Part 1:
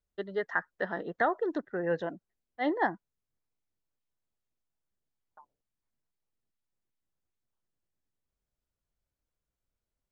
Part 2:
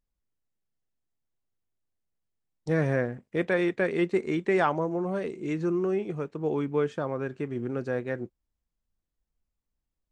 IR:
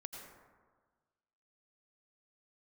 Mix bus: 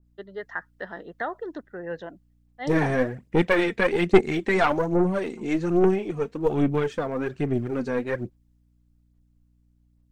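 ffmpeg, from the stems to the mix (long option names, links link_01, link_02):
-filter_complex "[0:a]aeval=exprs='val(0)+0.00126*(sin(2*PI*60*n/s)+sin(2*PI*2*60*n/s)/2+sin(2*PI*3*60*n/s)/3+sin(2*PI*4*60*n/s)/4+sin(2*PI*5*60*n/s)/5)':channel_layout=same,volume=-3.5dB[link_01];[1:a]lowshelf=frequency=370:gain=4,aphaser=in_gain=1:out_gain=1:delay=4.5:decay=0.55:speed=1.2:type=sinusoidal,aeval=exprs='0.501*(cos(1*acos(clip(val(0)/0.501,-1,1)))-cos(1*PI/2))+0.0891*(cos(4*acos(clip(val(0)/0.501,-1,1)))-cos(4*PI/2))':channel_layout=same,volume=1dB[link_02];[link_01][link_02]amix=inputs=2:normalize=0,adynamicequalizer=threshold=0.01:dfrequency=1700:dqfactor=0.7:tfrequency=1700:tqfactor=0.7:attack=5:release=100:ratio=0.375:range=2:mode=boostabove:tftype=highshelf"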